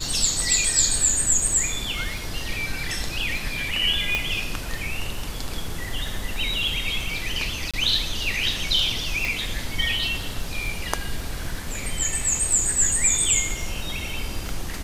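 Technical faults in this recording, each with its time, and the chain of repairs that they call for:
crackle 22/s -31 dBFS
4.15 pop -9 dBFS
7.71–7.74 gap 26 ms
9.25 pop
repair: de-click; interpolate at 7.71, 26 ms

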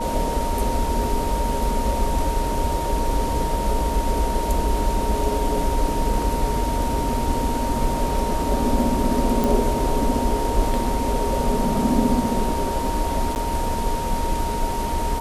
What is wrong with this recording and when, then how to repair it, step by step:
tone 930 Hz -26 dBFS
9.44 pop
13.35–13.36 gap 9.9 ms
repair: de-click; notch 930 Hz, Q 30; interpolate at 13.35, 9.9 ms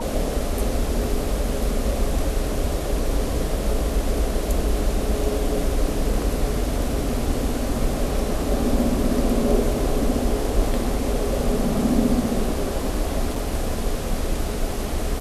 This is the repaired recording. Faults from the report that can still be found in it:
none

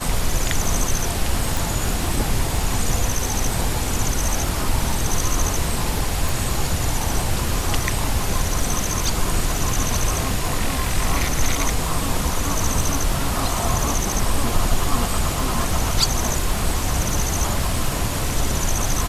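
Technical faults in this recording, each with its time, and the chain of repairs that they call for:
crackle 21/s -24 dBFS
1.57 pop
6.29 pop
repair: de-click

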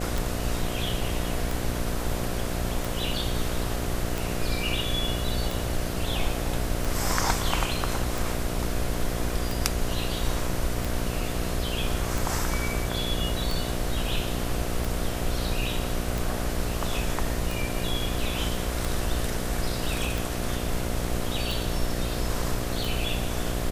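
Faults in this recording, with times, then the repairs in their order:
buzz 60 Hz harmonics 12 -32 dBFS
tick 45 rpm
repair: de-click; de-hum 60 Hz, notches 12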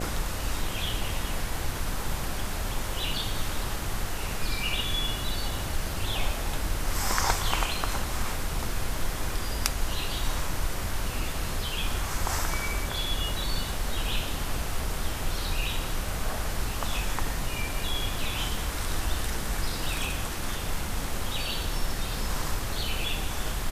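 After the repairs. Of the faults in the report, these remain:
none

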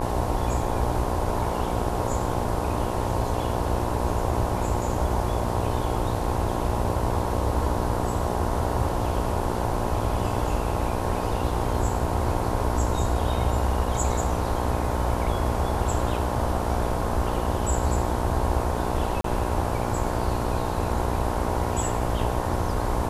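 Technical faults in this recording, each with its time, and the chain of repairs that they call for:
buzz 60 Hz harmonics 18 -29 dBFS
19.21–19.24 gap 33 ms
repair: de-hum 60 Hz, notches 18; interpolate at 19.21, 33 ms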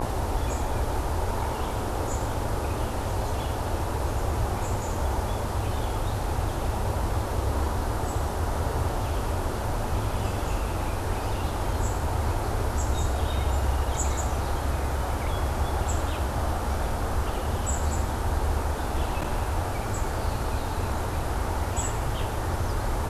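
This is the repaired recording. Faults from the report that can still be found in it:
none

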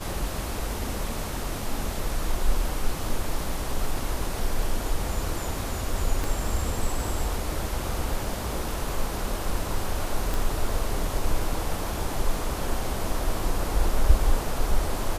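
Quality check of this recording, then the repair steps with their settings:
6.24 pop
10.34 pop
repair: de-click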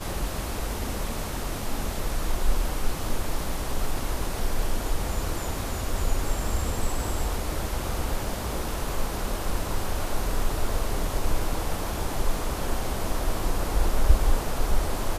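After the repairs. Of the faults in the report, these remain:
6.24 pop

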